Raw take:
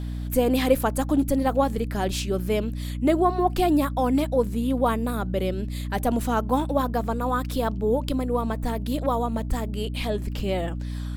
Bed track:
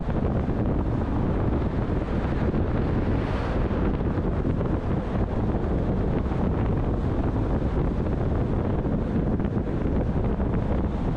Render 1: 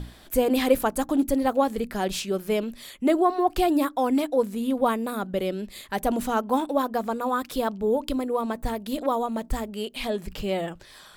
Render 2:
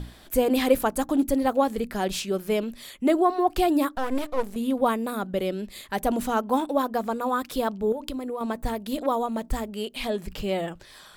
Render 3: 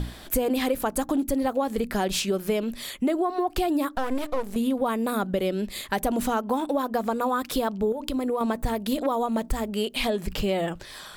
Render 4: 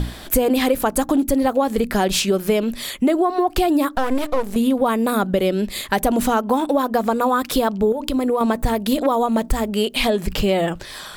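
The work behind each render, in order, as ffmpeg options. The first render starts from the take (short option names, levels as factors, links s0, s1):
-af "bandreject=f=60:t=h:w=6,bandreject=f=120:t=h:w=6,bandreject=f=180:t=h:w=6,bandreject=f=240:t=h:w=6,bandreject=f=300:t=h:w=6"
-filter_complex "[0:a]asettb=1/sr,asplit=3[s0][s1][s2];[s0]atrim=end=3.954[s3];[s1]atrim=start=3.95:end=4.56,asetpts=PTS-STARTPTS,afade=t=in:d=0.004:c=qsin,afade=t=out:st=0.606:d=0.004:c=qsin,aeval=exprs='max(val(0),0)':c=same[s4];[s2]atrim=start=4.556[s5];[s3][s4]acrossfade=d=0.004:c1=hsin:c2=qsin[s6];[s6][s5]acrossfade=d=0.004:c1=qsin:c2=hsin,asettb=1/sr,asplit=3[s7][s8][s9];[s7]atrim=end=7.924[s10];[s8]atrim=start=7.92:end=8.41,asetpts=PTS-STARTPTS,afade=t=in:d=0.004:c=qsin,afade=t=out:st=0.486:d=0.004:c=qsin,acompressor=threshold=0.0398:ratio=6:attack=3.2:release=140:knee=1:detection=peak[s11];[s9]atrim=start=8.406[s12];[s10][s11]acrossfade=d=0.004:c1=hsin:c2=qsin[s13];[s13][s12]acrossfade=d=0.004:c1=qsin:c2=hsin"
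-filter_complex "[0:a]asplit=2[s0][s1];[s1]alimiter=limit=0.133:level=0:latency=1:release=108,volume=1.12[s2];[s0][s2]amix=inputs=2:normalize=0,acompressor=threshold=0.0794:ratio=5"
-af "volume=2.24,alimiter=limit=0.794:level=0:latency=1"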